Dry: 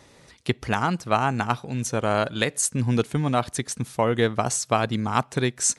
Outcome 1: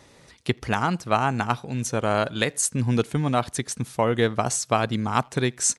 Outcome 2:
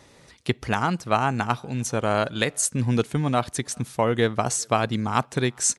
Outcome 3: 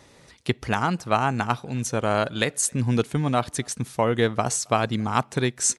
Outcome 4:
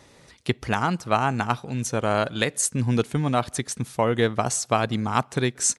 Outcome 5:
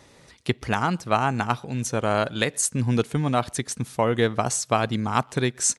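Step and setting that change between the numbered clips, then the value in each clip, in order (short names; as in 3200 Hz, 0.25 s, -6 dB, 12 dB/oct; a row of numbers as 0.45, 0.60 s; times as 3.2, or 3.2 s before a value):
speakerphone echo, time: 80, 400, 270, 180, 120 ms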